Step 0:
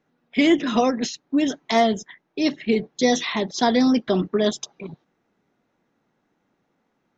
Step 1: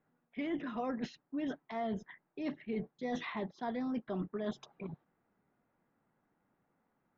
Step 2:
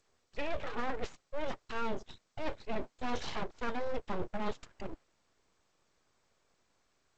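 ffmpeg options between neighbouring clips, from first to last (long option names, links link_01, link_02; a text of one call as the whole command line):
ffmpeg -i in.wav -af "lowpass=1600,equalizer=frequency=360:width_type=o:width=2:gain=-6,areverse,acompressor=threshold=-31dB:ratio=6,areverse,volume=-3.5dB" out.wav
ffmpeg -i in.wav -af "aeval=exprs='abs(val(0))':channel_layout=same,volume=4.5dB" -ar 16000 -c:a g722 out.g722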